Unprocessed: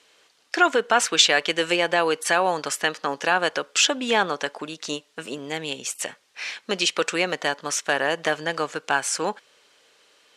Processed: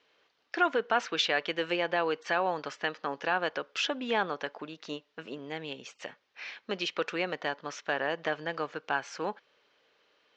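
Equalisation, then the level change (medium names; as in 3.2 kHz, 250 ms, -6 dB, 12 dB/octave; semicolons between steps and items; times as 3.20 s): steep low-pass 6.8 kHz 36 dB/octave; distance through air 140 m; treble shelf 5.1 kHz -4 dB; -7.0 dB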